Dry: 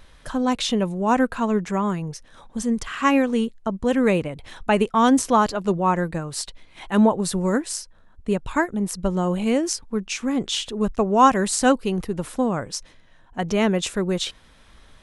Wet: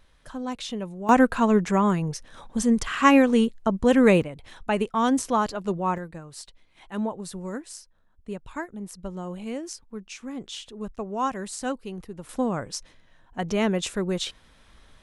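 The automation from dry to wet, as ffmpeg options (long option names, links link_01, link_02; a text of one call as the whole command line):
ffmpeg -i in.wav -af "asetnsamples=nb_out_samples=441:pad=0,asendcmd='1.09 volume volume 2dB;4.23 volume volume -5.5dB;5.98 volume volume -12dB;12.29 volume volume -3.5dB',volume=-10dB" out.wav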